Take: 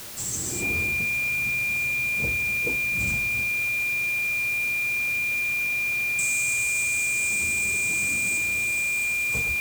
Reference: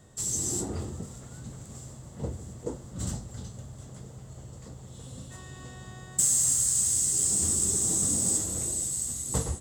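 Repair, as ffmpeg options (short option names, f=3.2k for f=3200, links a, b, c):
-af "bandreject=f=115.8:t=h:w=4,bandreject=f=231.6:t=h:w=4,bandreject=f=347.4:t=h:w=4,bandreject=f=463.2:t=h:w=4,bandreject=f=579:t=h:w=4,bandreject=f=2.4k:w=30,afwtdn=0.011,asetnsamples=n=441:p=0,asendcmd='3.43 volume volume 6dB',volume=0dB"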